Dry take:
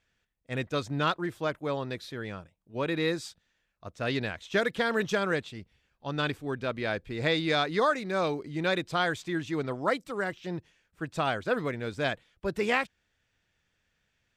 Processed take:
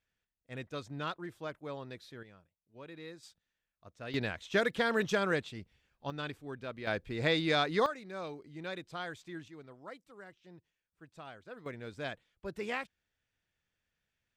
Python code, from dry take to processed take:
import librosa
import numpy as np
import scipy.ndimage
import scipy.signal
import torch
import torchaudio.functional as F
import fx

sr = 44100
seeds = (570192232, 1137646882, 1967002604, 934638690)

y = fx.gain(x, sr, db=fx.steps((0.0, -10.5), (2.23, -19.0), (3.23, -12.5), (4.14, -2.5), (6.1, -10.0), (6.87, -2.5), (7.86, -13.0), (9.48, -20.0), (11.66, -10.0)))